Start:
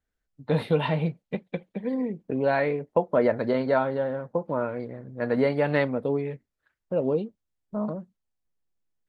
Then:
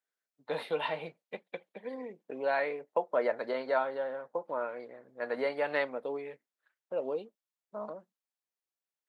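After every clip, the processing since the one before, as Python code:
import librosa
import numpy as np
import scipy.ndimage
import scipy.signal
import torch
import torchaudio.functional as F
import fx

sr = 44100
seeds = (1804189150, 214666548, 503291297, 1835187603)

y = scipy.signal.sosfilt(scipy.signal.butter(2, 540.0, 'highpass', fs=sr, output='sos'), x)
y = y * 10.0 ** (-4.0 / 20.0)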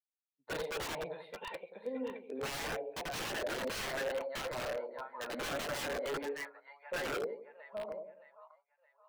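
y = fx.echo_split(x, sr, split_hz=840.0, low_ms=88, high_ms=619, feedback_pct=52, wet_db=-4)
y = (np.mod(10.0 ** (29.0 / 20.0) * y + 1.0, 2.0) - 1.0) / 10.0 ** (29.0 / 20.0)
y = fx.spectral_expand(y, sr, expansion=1.5)
y = y * 10.0 ** (1.0 / 20.0)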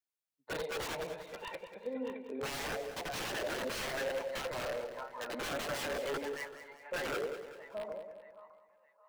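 y = fx.echo_feedback(x, sr, ms=192, feedback_pct=47, wet_db=-11.5)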